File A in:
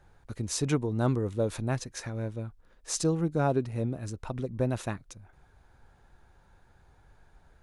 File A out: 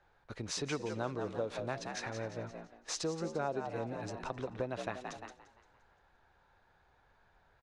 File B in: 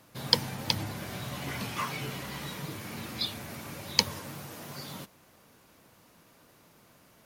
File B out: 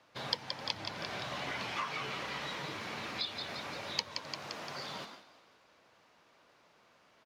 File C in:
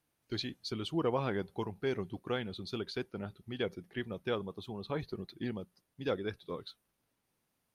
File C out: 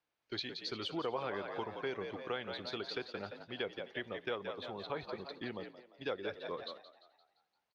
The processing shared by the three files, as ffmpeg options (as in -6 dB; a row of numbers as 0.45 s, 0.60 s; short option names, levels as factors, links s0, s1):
-filter_complex "[0:a]acrossover=split=410 5700:gain=0.251 1 0.0631[s0][s1][s2];[s0][s1][s2]amix=inputs=3:normalize=0,asplit=2[s3][s4];[s4]asplit=6[s5][s6][s7][s8][s9][s10];[s5]adelay=173,afreqshift=61,volume=0.355[s11];[s6]adelay=346,afreqshift=122,volume=0.174[s12];[s7]adelay=519,afreqshift=183,volume=0.0851[s13];[s8]adelay=692,afreqshift=244,volume=0.0417[s14];[s9]adelay=865,afreqshift=305,volume=0.0204[s15];[s10]adelay=1038,afreqshift=366,volume=0.01[s16];[s11][s12][s13][s14][s15][s16]amix=inputs=6:normalize=0[s17];[s3][s17]amix=inputs=2:normalize=0,acompressor=threshold=0.0112:ratio=2.5,asplit=2[s18][s19];[s19]aecho=0:1:260:0.0668[s20];[s18][s20]amix=inputs=2:normalize=0,agate=range=0.501:threshold=0.00251:ratio=16:detection=peak,volume=1.41"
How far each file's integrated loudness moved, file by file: -8.0 LU, -5.5 LU, -3.0 LU